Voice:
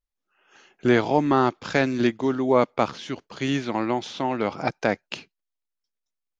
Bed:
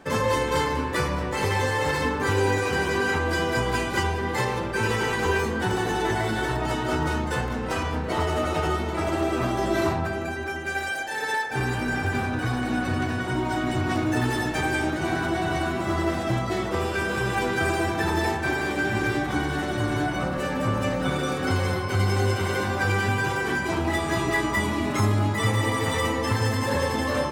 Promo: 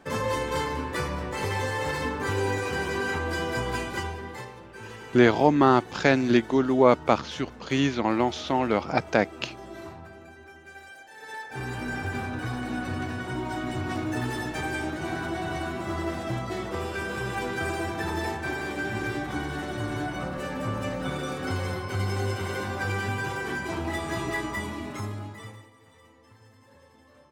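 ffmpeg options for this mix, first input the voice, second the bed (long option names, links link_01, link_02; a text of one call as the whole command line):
ffmpeg -i stem1.wav -i stem2.wav -filter_complex "[0:a]adelay=4300,volume=1dB[link_01];[1:a]volume=7.5dB,afade=type=out:start_time=3.76:duration=0.77:silence=0.223872,afade=type=in:start_time=11.16:duration=0.7:silence=0.251189,afade=type=out:start_time=24.28:duration=1.41:silence=0.0501187[link_02];[link_01][link_02]amix=inputs=2:normalize=0" out.wav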